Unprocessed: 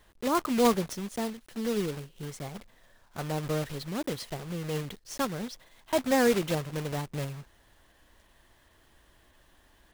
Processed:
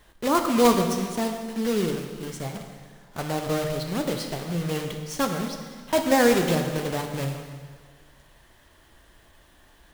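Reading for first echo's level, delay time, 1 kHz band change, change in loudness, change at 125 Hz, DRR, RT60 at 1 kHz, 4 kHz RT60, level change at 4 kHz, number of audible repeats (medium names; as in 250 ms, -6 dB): no echo, no echo, +6.0 dB, +5.5 dB, +5.0 dB, 4.0 dB, 1.8 s, 1.6 s, +6.0 dB, no echo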